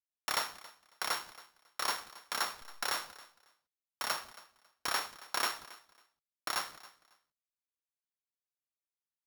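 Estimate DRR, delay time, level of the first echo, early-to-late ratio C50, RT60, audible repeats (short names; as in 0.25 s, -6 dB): none, 0.274 s, -19.5 dB, none, none, 2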